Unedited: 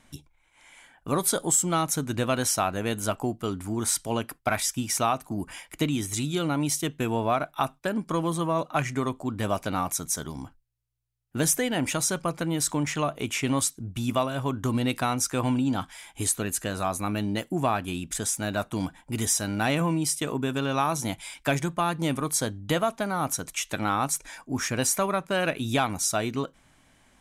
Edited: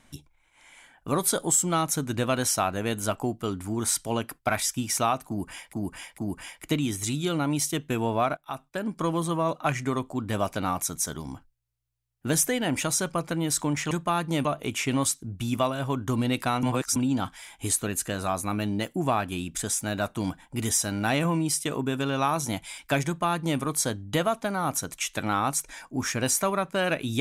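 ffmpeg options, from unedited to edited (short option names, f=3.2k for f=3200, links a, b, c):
-filter_complex "[0:a]asplit=8[a][b][c][d][e][f][g][h];[a]atrim=end=5.732[i];[b]atrim=start=5.278:end=5.732[j];[c]atrim=start=5.278:end=7.47,asetpts=PTS-STARTPTS,afade=t=out:st=2.188:d=0.004:c=hsin:silence=0.188365[k];[d]atrim=start=7.47:end=13.012,asetpts=PTS-STARTPTS,afade=t=in:d=0.66:silence=0.188365[l];[e]atrim=start=21.618:end=22.162[m];[f]atrim=start=13.008:end=15.192[n];[g]atrim=start=15.188:end=15.522,asetpts=PTS-STARTPTS,areverse[o];[h]atrim=start=15.518[p];[i][j]acrossfade=d=0.004:c1=hsin:c2=hsin[q];[k][l]concat=n=2:v=0:a=1[r];[q][r]acrossfade=d=0.004:c1=hsin:c2=hsin[s];[s][m]acrossfade=d=0.004:c1=hsin:c2=hsin[t];[t][n]acrossfade=d=0.004:c1=hsin:c2=hsin[u];[u][o]acrossfade=d=0.004:c1=hsin:c2=hsin[v];[v][p]acrossfade=d=0.004:c1=hsin:c2=hsin"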